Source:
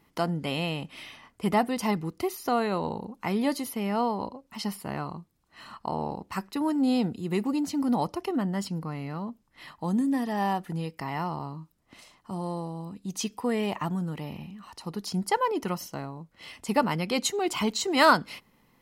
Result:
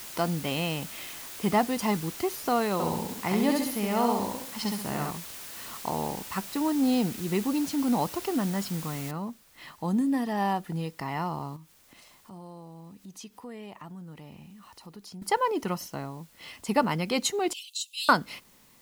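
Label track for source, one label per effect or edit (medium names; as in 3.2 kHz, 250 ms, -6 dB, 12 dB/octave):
2.730000	5.110000	feedback delay 67 ms, feedback 41%, level -3 dB
9.110000	9.110000	noise floor step -42 dB -60 dB
11.560000	15.220000	compression 2:1, threshold -51 dBFS
17.530000	18.090000	rippled Chebyshev high-pass 2.6 kHz, ripple 6 dB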